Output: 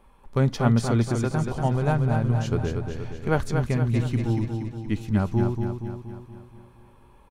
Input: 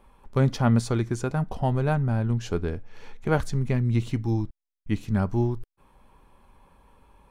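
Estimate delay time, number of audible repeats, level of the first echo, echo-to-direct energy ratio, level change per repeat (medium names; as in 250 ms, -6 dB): 236 ms, 6, -5.5 dB, -4.0 dB, -5.5 dB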